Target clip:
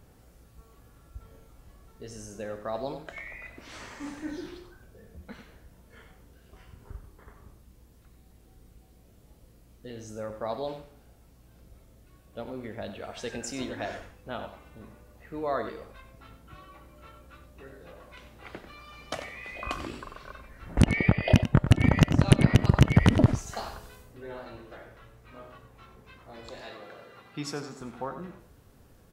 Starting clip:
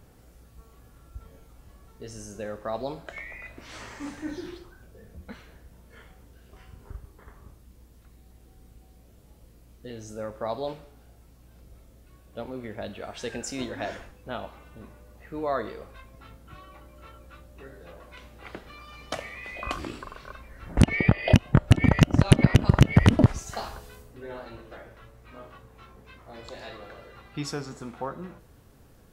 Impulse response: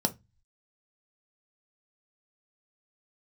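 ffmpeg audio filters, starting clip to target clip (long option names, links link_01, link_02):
-filter_complex "[0:a]asettb=1/sr,asplit=3[link_01][link_02][link_03];[link_01]atrim=end=26.614[link_04];[link_02]atrim=start=26.61:end=27.81,asetpts=PTS-STARTPTS,afade=type=in:duration=0.004:curve=qsin,afade=type=out:start_time=1.196:duration=0.004:curve=qsin,highpass=140[link_05];[link_03]atrim=start=27.806[link_06];[link_04][link_05]acrossfade=duration=0.004:curve1=hsin:curve2=qsin[link_07];[link_07][link_06]acrossfade=duration=0.004:curve1=qsin:curve2=hsin,asplit=2[link_08][link_09];[link_09]adelay=93.29,volume=-10dB,highshelf=frequency=4000:gain=-2.1[link_10];[link_08][link_10]amix=inputs=2:normalize=0,volume=-2dB"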